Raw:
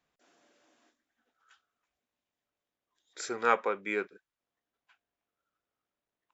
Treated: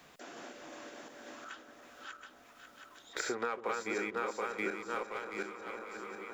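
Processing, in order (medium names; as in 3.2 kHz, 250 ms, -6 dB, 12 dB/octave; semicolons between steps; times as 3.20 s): backward echo that repeats 362 ms, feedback 47%, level 0 dB; waveshaping leveller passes 1; compression 12:1, threshold -34 dBFS, peak gain reduction 17.5 dB; on a send: echo whose repeats swap between lows and highs 272 ms, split 950 Hz, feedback 75%, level -12.5 dB; on the sum: three bands compressed up and down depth 70%; trim +3.5 dB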